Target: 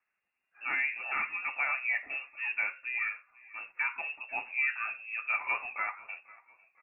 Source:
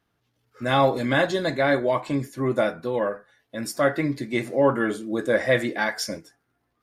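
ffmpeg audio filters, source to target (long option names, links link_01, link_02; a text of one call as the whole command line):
ffmpeg -i in.wav -filter_complex "[0:a]highpass=frequency=370:poles=1,equalizer=frequency=940:width=2.9:gain=5,alimiter=limit=-12.5dB:level=0:latency=1:release=339,asplit=4[link_01][link_02][link_03][link_04];[link_02]adelay=495,afreqshift=31,volume=-22dB[link_05];[link_03]adelay=990,afreqshift=62,volume=-30dB[link_06];[link_04]adelay=1485,afreqshift=93,volume=-37.9dB[link_07];[link_01][link_05][link_06][link_07]amix=inputs=4:normalize=0,lowpass=frequency=2500:width_type=q:width=0.5098,lowpass=frequency=2500:width_type=q:width=0.6013,lowpass=frequency=2500:width_type=q:width=0.9,lowpass=frequency=2500:width_type=q:width=2.563,afreqshift=-2900,volume=-8dB" out.wav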